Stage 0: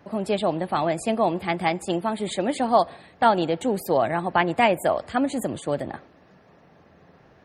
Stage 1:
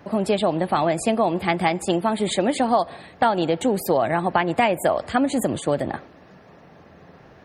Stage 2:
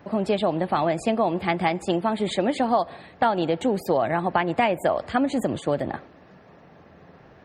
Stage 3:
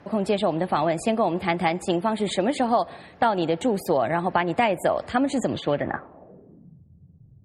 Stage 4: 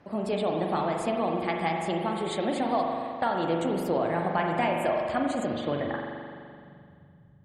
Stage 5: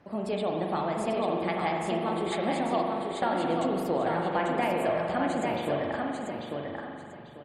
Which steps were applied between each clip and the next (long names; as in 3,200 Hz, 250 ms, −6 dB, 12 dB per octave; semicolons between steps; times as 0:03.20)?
downward compressor 4 to 1, threshold −22 dBFS, peak gain reduction 8.5 dB; level +6 dB
parametric band 11,000 Hz −13 dB 1 octave; level −2 dB
low-pass filter sweep 11,000 Hz → 120 Hz, 0:05.26–0:06.83
spring reverb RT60 2.3 s, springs 42 ms, chirp 65 ms, DRR 0.5 dB; level −7 dB
repeating echo 843 ms, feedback 25%, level −4 dB; level −2 dB